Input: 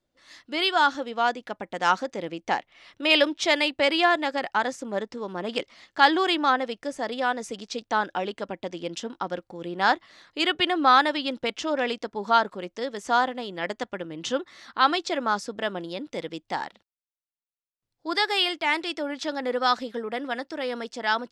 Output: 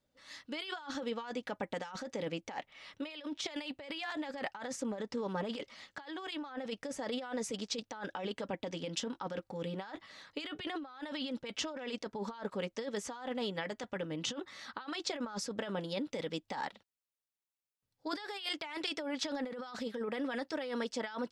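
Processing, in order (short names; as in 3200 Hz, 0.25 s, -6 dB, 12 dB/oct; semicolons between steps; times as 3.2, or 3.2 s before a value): notch comb 350 Hz; negative-ratio compressor -34 dBFS, ratio -1; gain -6 dB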